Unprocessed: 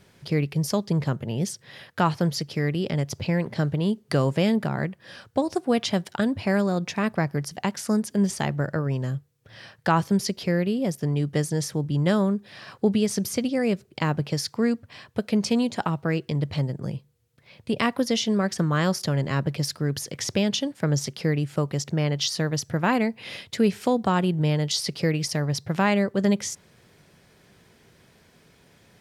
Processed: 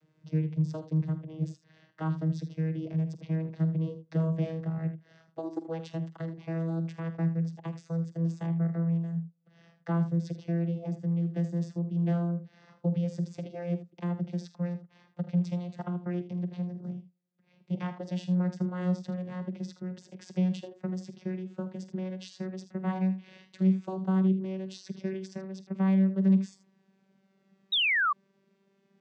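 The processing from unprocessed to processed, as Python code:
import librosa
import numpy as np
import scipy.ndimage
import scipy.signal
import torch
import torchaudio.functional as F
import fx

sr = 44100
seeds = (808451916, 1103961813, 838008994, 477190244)

y = fx.vocoder_glide(x, sr, note=51, semitones=4)
y = fx.room_early_taps(y, sr, ms=(48, 79), db=(-14.0, -12.5))
y = fx.spec_paint(y, sr, seeds[0], shape='fall', start_s=27.72, length_s=0.41, low_hz=1100.0, high_hz=3900.0, level_db=-20.0)
y = y * 10.0 ** (-5.5 / 20.0)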